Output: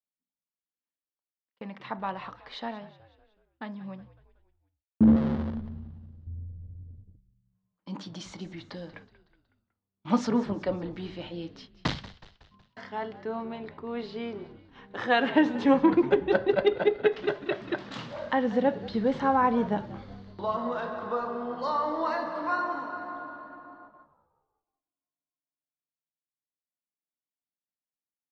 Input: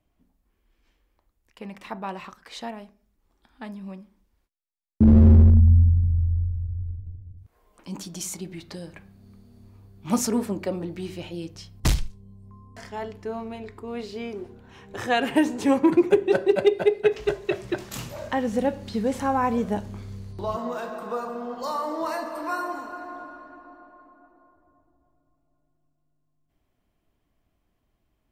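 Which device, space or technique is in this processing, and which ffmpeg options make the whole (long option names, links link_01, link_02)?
kitchen radio: -filter_complex "[0:a]highpass=210,equalizer=frequency=380:width_type=q:width=4:gain=-8,equalizer=frequency=690:width_type=q:width=4:gain=-3,equalizer=frequency=2500:width_type=q:width=4:gain=-7,lowpass=frequency=4000:width=0.5412,lowpass=frequency=4000:width=1.3066,agate=range=-31dB:threshold=-51dB:ratio=16:detection=peak,asettb=1/sr,asplit=3[link_01][link_02][link_03];[link_01]atrim=end=5.164[link_04];[link_02]atrim=start=5.16:end=6.27,asetpts=PTS-STARTPTS,afade=type=in:duration=0.004:curve=qsin,afade=type=out:start_time=1.106:duration=0.004:curve=qsin,aemphasis=mode=production:type=riaa[link_05];[link_03]atrim=start=6.266[link_06];[link_04][link_05]acrossfade=duration=0.004:curve1=hsin:curve2=qsin[link_07];[link_07][link_06]acrossfade=duration=0.004:curve1=qsin:curve2=hsin,asplit=5[link_08][link_09][link_10][link_11][link_12];[link_09]adelay=185,afreqshift=-69,volume=-17dB[link_13];[link_10]adelay=370,afreqshift=-138,volume=-23dB[link_14];[link_11]adelay=555,afreqshift=-207,volume=-29dB[link_15];[link_12]adelay=740,afreqshift=-276,volume=-35.1dB[link_16];[link_08][link_13][link_14][link_15][link_16]amix=inputs=5:normalize=0,volume=1.5dB"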